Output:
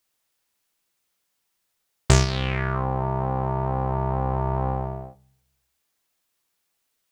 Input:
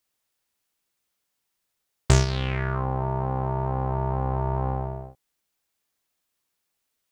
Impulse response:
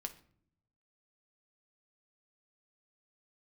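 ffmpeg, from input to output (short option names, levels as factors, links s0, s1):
-filter_complex "[0:a]asplit=2[s0][s1];[1:a]atrim=start_sample=2205,lowshelf=f=340:g=-6.5[s2];[s1][s2]afir=irnorm=-1:irlink=0,volume=0.944[s3];[s0][s3]amix=inputs=2:normalize=0,volume=0.891"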